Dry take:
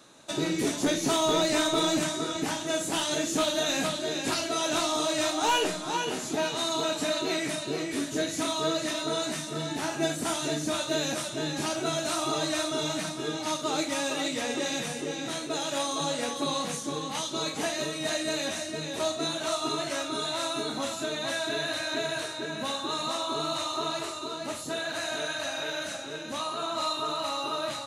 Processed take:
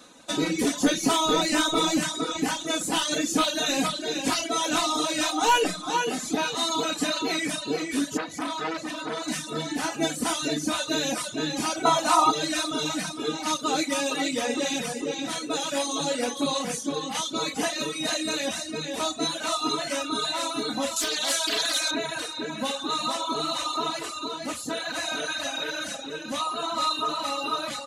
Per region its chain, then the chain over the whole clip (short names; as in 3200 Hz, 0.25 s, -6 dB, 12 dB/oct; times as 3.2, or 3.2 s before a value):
8.17–9.28 high shelf 3000 Hz -8.5 dB + core saturation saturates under 1500 Hz
11.85–12.31 bell 960 Hz +14 dB 1 oct + notch 1600 Hz, Q 15
20.96–21.91 tone controls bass -13 dB, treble +12 dB + Doppler distortion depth 0.25 ms
whole clip: comb 4 ms, depth 54%; reverb removal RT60 0.82 s; gain +3.5 dB